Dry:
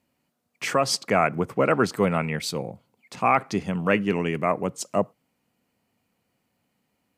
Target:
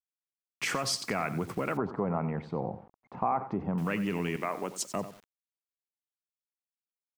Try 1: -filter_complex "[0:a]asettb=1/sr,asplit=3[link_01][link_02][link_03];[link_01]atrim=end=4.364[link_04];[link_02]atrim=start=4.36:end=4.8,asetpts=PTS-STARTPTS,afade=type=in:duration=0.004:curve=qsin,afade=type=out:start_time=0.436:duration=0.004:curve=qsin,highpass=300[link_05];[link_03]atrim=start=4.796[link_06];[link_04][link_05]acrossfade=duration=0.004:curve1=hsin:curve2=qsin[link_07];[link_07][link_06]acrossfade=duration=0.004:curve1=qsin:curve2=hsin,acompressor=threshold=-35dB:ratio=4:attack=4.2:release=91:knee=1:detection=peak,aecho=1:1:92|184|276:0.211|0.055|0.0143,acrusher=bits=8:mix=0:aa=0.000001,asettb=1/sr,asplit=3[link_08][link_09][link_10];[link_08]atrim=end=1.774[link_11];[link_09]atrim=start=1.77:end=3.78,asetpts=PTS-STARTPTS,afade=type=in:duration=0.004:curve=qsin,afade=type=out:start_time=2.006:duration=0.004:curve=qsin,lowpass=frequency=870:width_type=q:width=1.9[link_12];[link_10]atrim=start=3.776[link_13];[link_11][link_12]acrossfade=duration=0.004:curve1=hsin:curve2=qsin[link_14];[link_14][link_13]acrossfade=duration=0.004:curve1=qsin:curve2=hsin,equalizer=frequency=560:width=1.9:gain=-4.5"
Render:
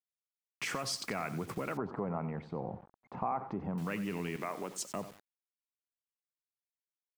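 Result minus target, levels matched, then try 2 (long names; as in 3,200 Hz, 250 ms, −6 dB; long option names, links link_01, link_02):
downward compressor: peak gain reduction +5.5 dB
-filter_complex "[0:a]asettb=1/sr,asplit=3[link_01][link_02][link_03];[link_01]atrim=end=4.364[link_04];[link_02]atrim=start=4.36:end=4.8,asetpts=PTS-STARTPTS,afade=type=in:duration=0.004:curve=qsin,afade=type=out:start_time=0.436:duration=0.004:curve=qsin,highpass=300[link_05];[link_03]atrim=start=4.796[link_06];[link_04][link_05]acrossfade=duration=0.004:curve1=hsin:curve2=qsin[link_07];[link_07][link_06]acrossfade=duration=0.004:curve1=qsin:curve2=hsin,acompressor=threshold=-27.5dB:ratio=4:attack=4.2:release=91:knee=1:detection=peak,aecho=1:1:92|184|276:0.211|0.055|0.0143,acrusher=bits=8:mix=0:aa=0.000001,asettb=1/sr,asplit=3[link_08][link_09][link_10];[link_08]atrim=end=1.774[link_11];[link_09]atrim=start=1.77:end=3.78,asetpts=PTS-STARTPTS,afade=type=in:duration=0.004:curve=qsin,afade=type=out:start_time=2.006:duration=0.004:curve=qsin,lowpass=frequency=870:width_type=q:width=1.9[link_12];[link_10]atrim=start=3.776[link_13];[link_11][link_12]acrossfade=duration=0.004:curve1=hsin:curve2=qsin[link_14];[link_14][link_13]acrossfade=duration=0.004:curve1=qsin:curve2=hsin,equalizer=frequency=560:width=1.9:gain=-4.5"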